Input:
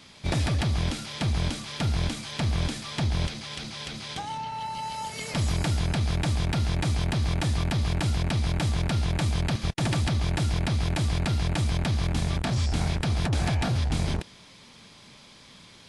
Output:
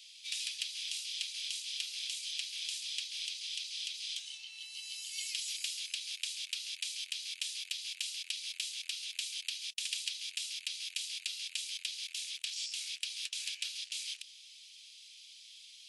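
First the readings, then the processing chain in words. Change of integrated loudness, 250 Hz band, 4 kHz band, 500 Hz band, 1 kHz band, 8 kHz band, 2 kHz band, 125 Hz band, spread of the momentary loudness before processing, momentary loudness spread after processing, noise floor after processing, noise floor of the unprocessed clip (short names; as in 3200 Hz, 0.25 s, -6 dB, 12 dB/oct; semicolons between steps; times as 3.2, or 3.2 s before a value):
-10.0 dB, under -40 dB, -0.5 dB, under -40 dB, under -40 dB, 0.0 dB, -9.0 dB, under -40 dB, 7 LU, 8 LU, -55 dBFS, -51 dBFS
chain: Chebyshev high-pass 2700 Hz, order 4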